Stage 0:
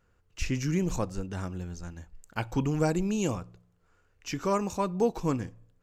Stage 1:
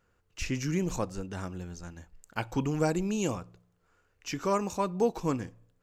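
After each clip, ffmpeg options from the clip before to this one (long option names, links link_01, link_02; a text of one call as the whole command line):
ffmpeg -i in.wav -af "lowshelf=frequency=140:gain=-6" out.wav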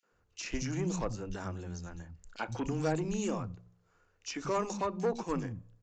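ffmpeg -i in.wav -filter_complex "[0:a]aresample=16000,asoftclip=type=tanh:threshold=-24dB,aresample=44100,acrossover=split=220|2700[link_01][link_02][link_03];[link_02]adelay=30[link_04];[link_01]adelay=120[link_05];[link_05][link_04][link_03]amix=inputs=3:normalize=0" out.wav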